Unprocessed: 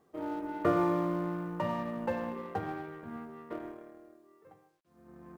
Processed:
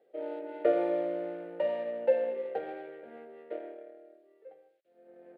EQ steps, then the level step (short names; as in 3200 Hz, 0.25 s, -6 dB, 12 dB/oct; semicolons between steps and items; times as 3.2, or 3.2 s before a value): resonant high-pass 530 Hz, resonance Q 4.9; air absorption 56 m; fixed phaser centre 2600 Hz, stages 4; 0.0 dB